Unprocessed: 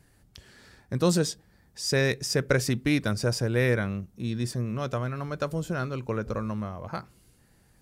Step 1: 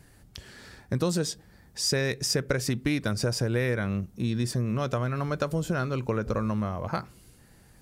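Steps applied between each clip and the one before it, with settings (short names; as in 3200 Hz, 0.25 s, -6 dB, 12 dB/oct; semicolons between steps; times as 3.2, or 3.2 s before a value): compressor 5:1, threshold -29 dBFS, peak gain reduction 11 dB; gain +5.5 dB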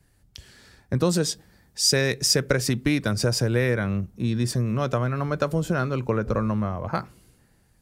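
three-band expander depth 40%; gain +4 dB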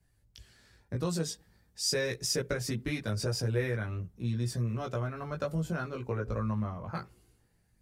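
chorus voices 4, 0.43 Hz, delay 18 ms, depth 1.4 ms; gain -7 dB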